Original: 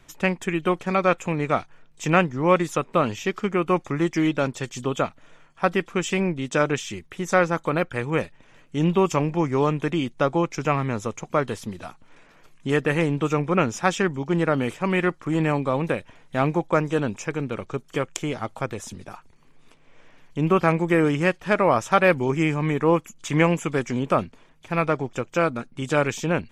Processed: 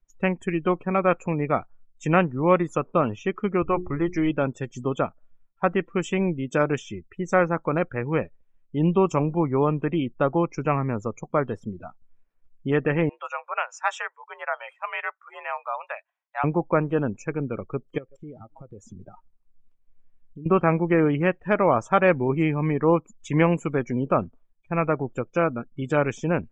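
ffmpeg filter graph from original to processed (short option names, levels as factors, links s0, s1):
-filter_complex "[0:a]asettb=1/sr,asplit=3[s0][s1][s2];[s0]atrim=end=3.624[s3];[s1]atrim=start=3.62:end=4.3,asetpts=PTS-STARTPTS,afade=t=in:d=0.004:c=qsin,afade=t=out:st=0.676:d=0.004:c=qsin,lowshelf=f=100:t=q:w=1.5:g=14,bandreject=f=60:t=h:w=6,bandreject=f=120:t=h:w=6,bandreject=f=180:t=h:w=6,bandreject=f=240:t=h:w=6,bandreject=f=300:t=h:w=6,bandreject=f=360:t=h:w=6,bandreject=f=420:t=h:w=6[s4];[s2]atrim=start=4.296[s5];[s3][s4]acrossfade=d=0.004:c1=hsin:c2=qsin[s6];[s6][s5]acrossfade=d=0.004:c1=qsin:c2=hsin,asettb=1/sr,asplit=3[s7][s8][s9];[s7]atrim=end=13.094[s10];[s8]atrim=start=13.09:end=16.44,asetpts=PTS-STARTPTS,afade=t=in:d=0.004:c=qsin,afade=t=out:st=3.346:d=0.004:c=qsin,highpass=f=700:w=0.5412,highpass=f=700:w=1.3066,afreqshift=60[s11];[s9]atrim=start=16.436[s12];[s10][s11]acrossfade=d=0.004:c1=hsin:c2=qsin[s13];[s13][s12]acrossfade=d=0.004:c1=qsin:c2=hsin,asettb=1/sr,asplit=3[s14][s15][s16];[s14]atrim=end=17.984[s17];[s15]atrim=start=17.98:end=20.46,asetpts=PTS-STARTPTS,afade=t=in:d=0.004:c=qsin,afade=t=out:st=2.476:d=0.004:c=qsin,asplit=2[s18][s19];[s19]adelay=132,lowpass=f=3300:p=1,volume=0.0708,asplit=2[s20][s21];[s21]adelay=132,lowpass=f=3300:p=1,volume=0.54,asplit=2[s22][s23];[s23]adelay=132,lowpass=f=3300:p=1,volume=0.54,asplit=2[s24][s25];[s25]adelay=132,lowpass=f=3300:p=1,volume=0.54[s26];[s18][s20][s22][s24][s26]amix=inputs=5:normalize=0,atrim=end_sample=109368,acompressor=threshold=0.02:ratio=20:attack=3.2:release=140:knee=1:detection=peak,asoftclip=type=hard:threshold=0.0251[s27];[s16]atrim=start=20.456[s28];[s17][s27]acrossfade=d=0.004:c1=hsin:c2=qsin[s29];[s29][s28]acrossfade=d=0.004:c1=qsin:c2=hsin,highshelf=f=5400:g=3.5,afftdn=nr=30:nf=-34,highshelf=f=2600:g=-10"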